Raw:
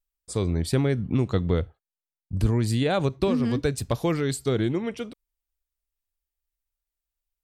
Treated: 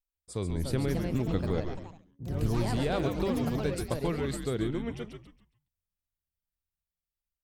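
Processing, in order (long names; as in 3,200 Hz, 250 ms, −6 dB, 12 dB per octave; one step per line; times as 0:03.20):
parametric band 6,600 Hz −3 dB
on a send: echo with shifted repeats 137 ms, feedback 31%, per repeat −90 Hz, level −6 dB
on the sum: delay with pitch and tempo change per echo 368 ms, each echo +4 semitones, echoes 3, each echo −6 dB
level −7.5 dB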